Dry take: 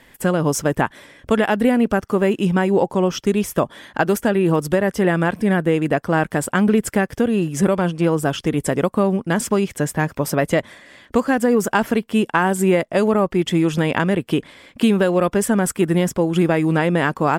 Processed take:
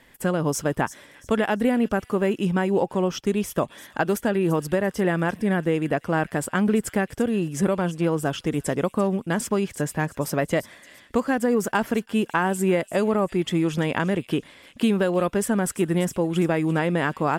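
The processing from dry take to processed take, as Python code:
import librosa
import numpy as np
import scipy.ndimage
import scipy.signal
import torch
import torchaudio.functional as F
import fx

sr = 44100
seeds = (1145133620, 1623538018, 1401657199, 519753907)

y = fx.echo_wet_highpass(x, sr, ms=341, feedback_pct=32, hz=3500.0, wet_db=-12.5)
y = y * 10.0 ** (-5.0 / 20.0)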